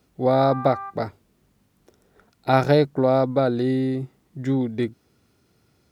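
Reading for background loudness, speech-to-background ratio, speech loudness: -35.0 LUFS, 13.0 dB, -22.0 LUFS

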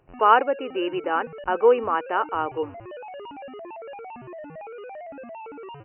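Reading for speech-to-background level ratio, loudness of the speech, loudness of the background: 16.5 dB, -23.0 LUFS, -39.5 LUFS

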